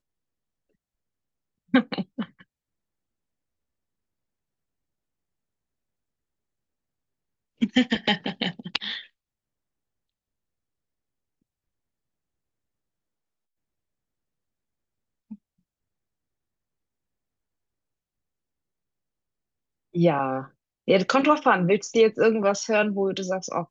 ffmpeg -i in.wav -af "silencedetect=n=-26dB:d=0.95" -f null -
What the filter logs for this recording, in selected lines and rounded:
silence_start: 0.00
silence_end: 1.74 | silence_duration: 1.74
silence_start: 2.23
silence_end: 7.62 | silence_duration: 5.39
silence_start: 8.98
silence_end: 19.96 | silence_duration: 10.98